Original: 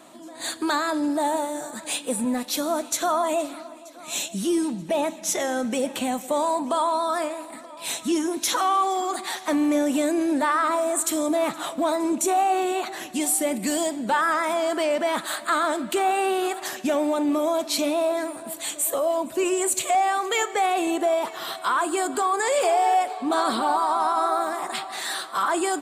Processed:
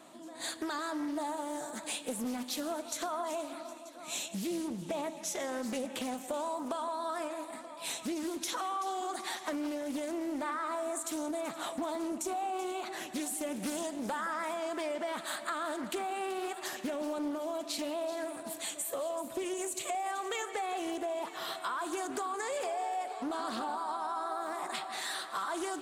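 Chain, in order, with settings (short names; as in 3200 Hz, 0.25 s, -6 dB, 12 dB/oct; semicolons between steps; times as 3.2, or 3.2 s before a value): limiter -15.5 dBFS, peak gain reduction 4 dB; compressor, threshold -27 dBFS, peak gain reduction 8 dB; split-band echo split 2800 Hz, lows 0.168 s, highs 0.382 s, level -13.5 dB; Doppler distortion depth 0.38 ms; gain -6 dB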